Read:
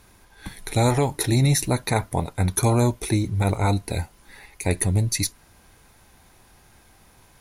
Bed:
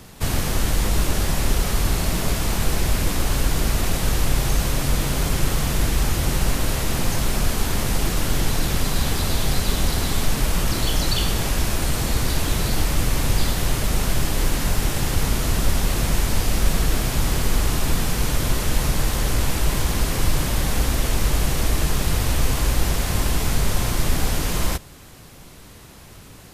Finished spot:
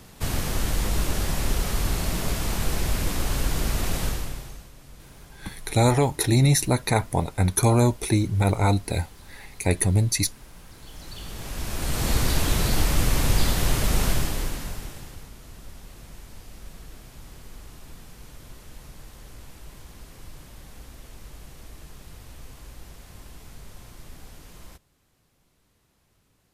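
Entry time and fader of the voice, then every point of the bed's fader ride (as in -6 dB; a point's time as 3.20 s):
5.00 s, +0.5 dB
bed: 4.04 s -4.5 dB
4.71 s -26.5 dB
10.71 s -26.5 dB
12.10 s -1 dB
14.08 s -1 dB
15.31 s -23.5 dB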